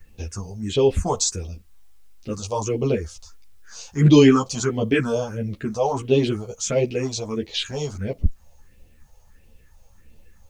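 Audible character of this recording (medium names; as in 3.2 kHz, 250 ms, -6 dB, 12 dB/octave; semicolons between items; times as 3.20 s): phasing stages 4, 1.5 Hz, lowest notch 290–1500 Hz; a quantiser's noise floor 12-bit, dither triangular; a shimmering, thickened sound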